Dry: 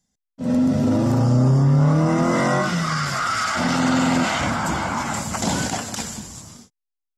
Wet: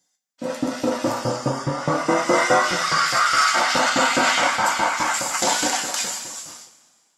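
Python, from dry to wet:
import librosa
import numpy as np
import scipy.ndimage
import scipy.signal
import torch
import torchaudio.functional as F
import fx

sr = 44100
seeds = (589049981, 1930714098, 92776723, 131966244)

y = fx.filter_lfo_highpass(x, sr, shape='saw_up', hz=4.8, low_hz=280.0, high_hz=2700.0, q=0.86)
y = fx.rev_double_slope(y, sr, seeds[0], early_s=0.23, late_s=1.8, knee_db=-18, drr_db=0.5)
y = F.gain(torch.from_numpy(y), 3.0).numpy()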